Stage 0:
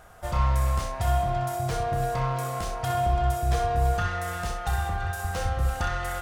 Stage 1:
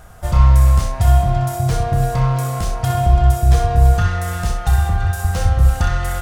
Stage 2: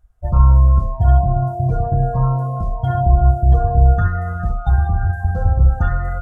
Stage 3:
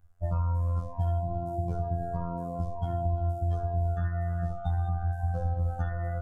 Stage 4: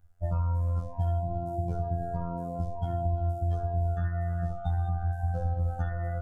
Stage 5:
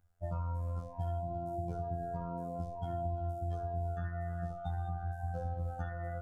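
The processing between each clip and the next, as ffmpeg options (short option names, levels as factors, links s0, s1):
-af "bass=f=250:g=9,treble=f=4000:g=4,volume=1.68"
-af "afftdn=nr=31:nf=-22"
-filter_complex "[0:a]afftfilt=real='hypot(re,im)*cos(PI*b)':imag='0':win_size=2048:overlap=0.75,acrossover=split=550|1700[s0][s1][s2];[s0]acompressor=threshold=0.0398:ratio=4[s3];[s1]acompressor=threshold=0.00891:ratio=4[s4];[s2]acompressor=threshold=0.00158:ratio=4[s5];[s3][s4][s5]amix=inputs=3:normalize=0"
-af "bandreject=f=1100:w=6.7"
-af "lowshelf=f=75:g=-11.5,volume=0.631"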